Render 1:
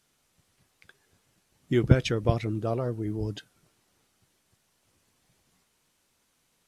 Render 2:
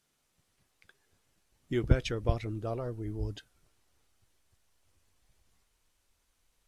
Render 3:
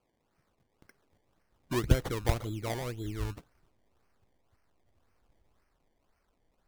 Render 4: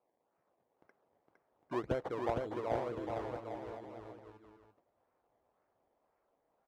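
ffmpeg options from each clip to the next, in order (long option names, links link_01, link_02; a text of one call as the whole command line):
ffmpeg -i in.wav -af "asubboost=boost=10:cutoff=55,volume=-5.5dB" out.wav
ffmpeg -i in.wav -af "acrusher=samples=23:mix=1:aa=0.000001:lfo=1:lforange=23:lforate=1.9" out.wav
ffmpeg -i in.wav -filter_complex "[0:a]bandpass=frequency=670:width_type=q:width=1.3:csg=0,asplit=2[link_01][link_02];[link_02]aecho=0:1:460|805|1064|1258|1403:0.631|0.398|0.251|0.158|0.1[link_03];[link_01][link_03]amix=inputs=2:normalize=0,volume=1dB" out.wav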